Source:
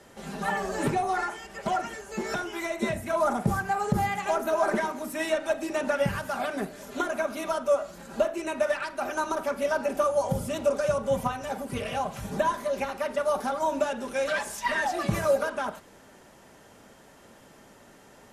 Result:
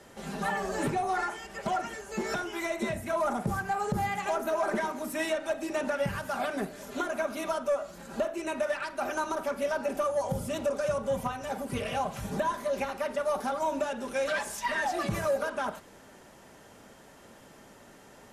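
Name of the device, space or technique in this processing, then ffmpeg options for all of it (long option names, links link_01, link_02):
soft clipper into limiter: -af "asoftclip=type=tanh:threshold=-16dB,alimiter=limit=-21dB:level=0:latency=1:release=448"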